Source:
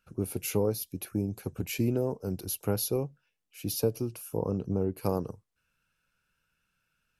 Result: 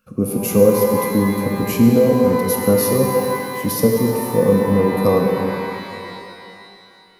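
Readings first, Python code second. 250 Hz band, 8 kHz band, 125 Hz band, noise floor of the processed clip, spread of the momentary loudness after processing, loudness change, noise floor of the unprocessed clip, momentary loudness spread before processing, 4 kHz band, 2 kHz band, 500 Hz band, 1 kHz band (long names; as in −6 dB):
+16.5 dB, +11.0 dB, +11.5 dB, −47 dBFS, 11 LU, +15.0 dB, −79 dBFS, 7 LU, +10.5 dB, +18.5 dB, +17.0 dB, +20.0 dB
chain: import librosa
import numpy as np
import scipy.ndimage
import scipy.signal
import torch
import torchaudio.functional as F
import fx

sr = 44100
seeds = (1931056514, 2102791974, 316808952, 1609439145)

y = fx.high_shelf(x, sr, hz=9400.0, db=9.5)
y = fx.small_body(y, sr, hz=(220.0, 500.0, 1100.0), ring_ms=40, db=15)
y = fx.rev_shimmer(y, sr, seeds[0], rt60_s=2.6, semitones=12, shimmer_db=-8, drr_db=1.0)
y = F.gain(torch.from_numpy(y), 3.5).numpy()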